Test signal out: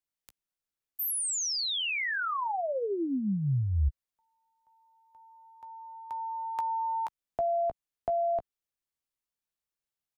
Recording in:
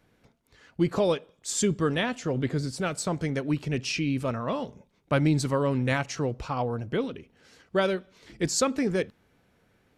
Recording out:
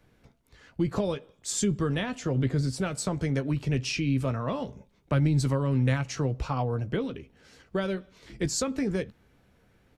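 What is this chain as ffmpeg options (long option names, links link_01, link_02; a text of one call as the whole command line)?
ffmpeg -i in.wav -filter_complex "[0:a]lowshelf=frequency=100:gain=9,acrossover=split=180[link_01][link_02];[link_02]acompressor=threshold=-27dB:ratio=6[link_03];[link_01][link_03]amix=inputs=2:normalize=0,asplit=2[link_04][link_05];[link_05]adelay=15,volume=-11dB[link_06];[link_04][link_06]amix=inputs=2:normalize=0" out.wav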